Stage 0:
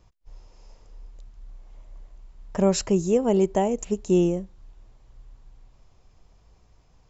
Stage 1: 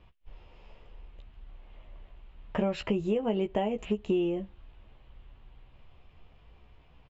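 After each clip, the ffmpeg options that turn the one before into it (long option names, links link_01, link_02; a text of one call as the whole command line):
ffmpeg -i in.wav -filter_complex "[0:a]highshelf=frequency=4300:width_type=q:width=3:gain=-13.5,asplit=2[link_01][link_02];[link_02]adelay=14,volume=-6dB[link_03];[link_01][link_03]amix=inputs=2:normalize=0,acompressor=threshold=-25dB:ratio=6" out.wav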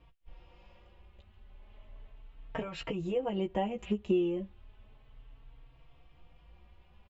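ffmpeg -i in.wav -filter_complex "[0:a]asplit=2[link_01][link_02];[link_02]adelay=3.9,afreqshift=0.34[link_03];[link_01][link_03]amix=inputs=2:normalize=1" out.wav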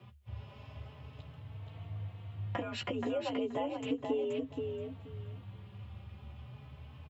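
ffmpeg -i in.wav -filter_complex "[0:a]acompressor=threshold=-43dB:ratio=2.5,afreqshift=70,asplit=2[link_01][link_02];[link_02]aecho=0:1:477|954|1431:0.562|0.101|0.0182[link_03];[link_01][link_03]amix=inputs=2:normalize=0,volume=6dB" out.wav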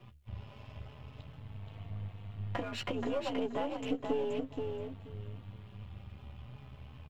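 ffmpeg -i in.wav -af "aeval=exprs='if(lt(val(0),0),0.447*val(0),val(0))':channel_layout=same,volume=2.5dB" out.wav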